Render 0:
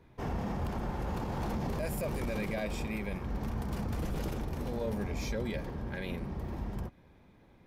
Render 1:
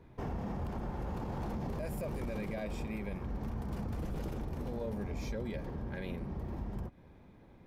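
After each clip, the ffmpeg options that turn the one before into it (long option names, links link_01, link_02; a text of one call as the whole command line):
ffmpeg -i in.wav -af "tiltshelf=frequency=1400:gain=3,acompressor=threshold=-39dB:ratio=2" out.wav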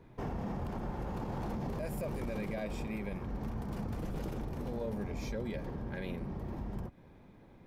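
ffmpeg -i in.wav -af "equalizer=frequency=66:width_type=o:width=0.29:gain=-12.5,volume=1dB" out.wav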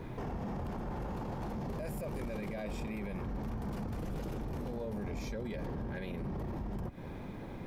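ffmpeg -i in.wav -af "acompressor=threshold=-45dB:ratio=6,alimiter=level_in=21dB:limit=-24dB:level=0:latency=1:release=18,volume=-21dB,volume=13.5dB" out.wav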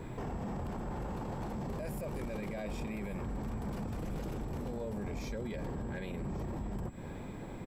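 ffmpeg -i in.wav -af "aeval=exprs='val(0)+0.000398*sin(2*PI*7700*n/s)':channel_layout=same,aecho=1:1:1139:0.141" out.wav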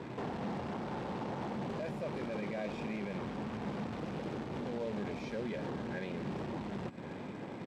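ffmpeg -i in.wav -af "acrusher=bits=3:mode=log:mix=0:aa=0.000001,highpass=160,lowpass=3500,volume=2dB" out.wav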